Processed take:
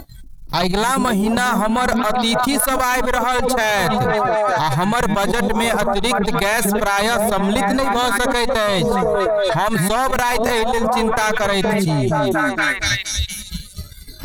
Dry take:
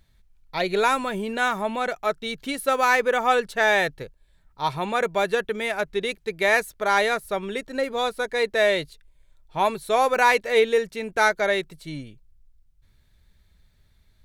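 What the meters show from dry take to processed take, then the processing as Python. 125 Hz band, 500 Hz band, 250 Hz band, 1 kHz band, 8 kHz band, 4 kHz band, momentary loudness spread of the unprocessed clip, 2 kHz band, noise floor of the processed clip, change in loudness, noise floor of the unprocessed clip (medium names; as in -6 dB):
+17.5 dB, +5.0 dB, +14.0 dB, +6.5 dB, +13.5 dB, +8.5 dB, 10 LU, +4.0 dB, -36 dBFS, +5.5 dB, -61 dBFS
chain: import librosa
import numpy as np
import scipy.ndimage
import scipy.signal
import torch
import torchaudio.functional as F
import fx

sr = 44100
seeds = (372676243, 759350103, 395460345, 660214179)

p1 = fx.peak_eq(x, sr, hz=2300.0, db=-14.0, octaves=1.7)
p2 = fx.cheby_harmonics(p1, sr, harmonics=(2,), levels_db=(-20,), full_scale_db=-11.5)
p3 = fx.noise_reduce_blind(p2, sr, reduce_db=23)
p4 = fx.transient(p3, sr, attack_db=5, sustain_db=-11)
p5 = p4 + fx.echo_stepped(p4, sr, ms=236, hz=220.0, octaves=0.7, feedback_pct=70, wet_db=-8.5, dry=0)
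p6 = fx.cheby_harmonics(p5, sr, harmonics=(6,), levels_db=(-21,), full_scale_db=-7.5)
p7 = fx.peak_eq(p6, sr, hz=440.0, db=-14.0, octaves=1.3)
p8 = fx.env_flatten(p7, sr, amount_pct=100)
y = p8 * 10.0 ** (4.5 / 20.0)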